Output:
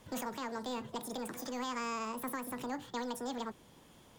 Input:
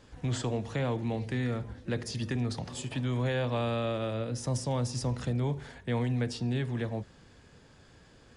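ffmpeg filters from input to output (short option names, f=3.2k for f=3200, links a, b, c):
-filter_complex "[0:a]acrossover=split=250[a][b];[a]asoftclip=type=tanh:threshold=-35dB[c];[c][b]amix=inputs=2:normalize=0,asetrate=88200,aresample=44100,alimiter=level_in=2dB:limit=-24dB:level=0:latency=1:release=411,volume=-2dB,volume=-3dB"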